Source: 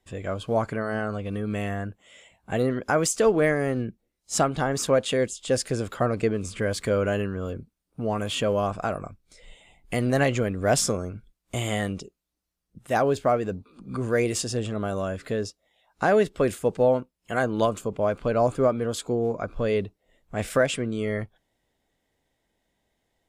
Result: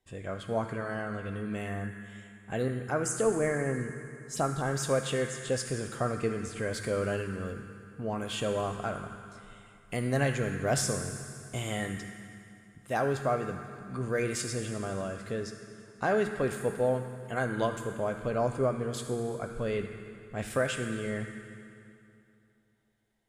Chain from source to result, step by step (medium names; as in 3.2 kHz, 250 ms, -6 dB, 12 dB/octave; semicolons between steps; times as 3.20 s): 2.68–4.64 s: touch-sensitive phaser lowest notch 210 Hz, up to 3.9 kHz, full sweep at -20 dBFS; on a send: fifteen-band graphic EQ 630 Hz -8 dB, 1.6 kHz +10 dB, 10 kHz +11 dB + reverberation RT60 2.7 s, pre-delay 4 ms, DRR 2.5 dB; on the sum: trim -7 dB